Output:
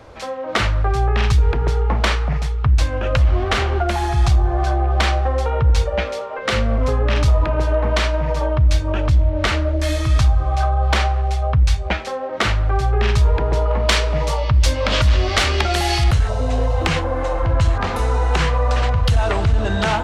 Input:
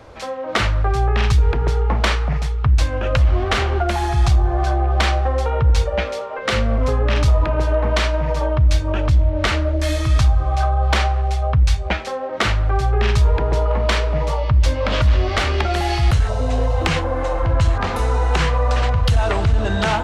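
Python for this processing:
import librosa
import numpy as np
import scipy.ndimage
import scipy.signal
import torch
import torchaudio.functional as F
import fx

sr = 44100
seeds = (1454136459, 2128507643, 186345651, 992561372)

y = fx.high_shelf(x, sr, hz=3000.0, db=9.5, at=(13.88, 16.04))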